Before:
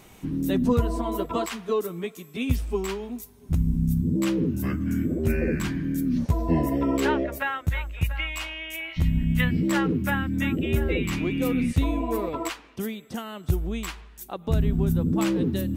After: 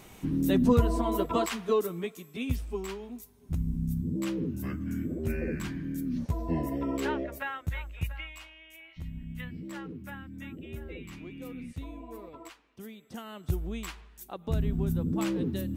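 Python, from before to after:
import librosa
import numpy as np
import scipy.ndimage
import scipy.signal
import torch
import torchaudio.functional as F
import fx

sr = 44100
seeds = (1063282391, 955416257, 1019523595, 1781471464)

y = fx.gain(x, sr, db=fx.line((1.71, -0.5), (2.68, -7.5), (8.05, -7.5), (8.51, -17.0), (12.66, -17.0), (13.31, -6.0)))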